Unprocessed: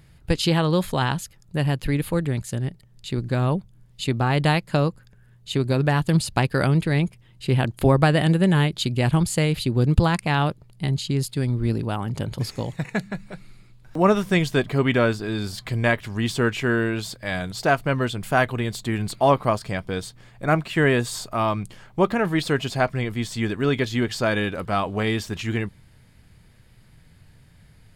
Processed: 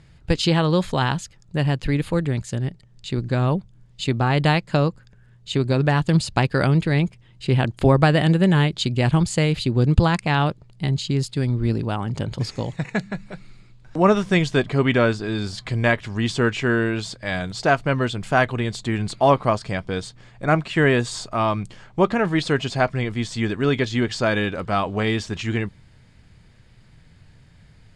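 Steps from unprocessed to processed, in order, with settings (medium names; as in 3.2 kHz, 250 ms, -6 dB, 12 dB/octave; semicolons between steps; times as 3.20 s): low-pass 8.1 kHz 24 dB/octave; trim +1.5 dB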